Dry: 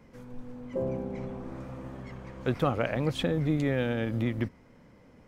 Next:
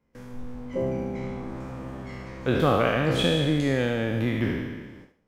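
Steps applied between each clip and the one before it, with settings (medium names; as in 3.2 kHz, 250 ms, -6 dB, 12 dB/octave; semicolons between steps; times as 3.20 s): spectral sustain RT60 1.45 s; gate with hold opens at -38 dBFS; thinning echo 74 ms, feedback 30%, level -9 dB; trim +2 dB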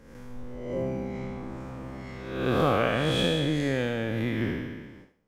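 reverse spectral sustain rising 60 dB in 0.94 s; trim -4 dB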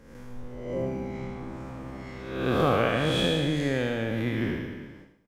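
feedback delay 104 ms, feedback 30%, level -11 dB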